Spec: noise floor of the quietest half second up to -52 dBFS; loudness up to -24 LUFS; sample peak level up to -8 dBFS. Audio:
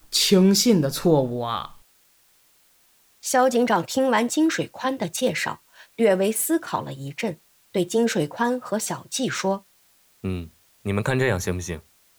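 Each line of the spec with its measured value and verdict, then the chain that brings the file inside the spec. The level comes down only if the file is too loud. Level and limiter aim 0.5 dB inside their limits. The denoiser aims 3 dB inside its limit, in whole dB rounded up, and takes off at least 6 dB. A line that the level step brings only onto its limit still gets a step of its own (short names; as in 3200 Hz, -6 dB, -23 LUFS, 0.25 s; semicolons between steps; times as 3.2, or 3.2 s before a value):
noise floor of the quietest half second -60 dBFS: OK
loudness -23.0 LUFS: fail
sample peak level -6.0 dBFS: fail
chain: gain -1.5 dB; limiter -8.5 dBFS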